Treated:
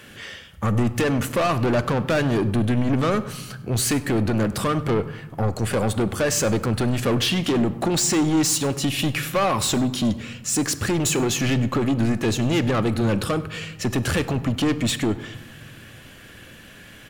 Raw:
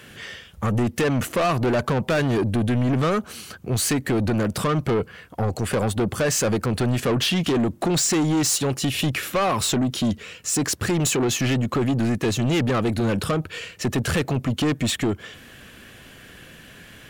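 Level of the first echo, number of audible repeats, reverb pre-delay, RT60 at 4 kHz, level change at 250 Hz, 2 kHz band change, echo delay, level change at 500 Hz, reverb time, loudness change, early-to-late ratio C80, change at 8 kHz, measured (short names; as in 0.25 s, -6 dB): -21.5 dB, 1, 3 ms, 0.60 s, +1.0 dB, +0.5 dB, 99 ms, 0.0 dB, 1.1 s, +0.5 dB, 16.0 dB, 0.0 dB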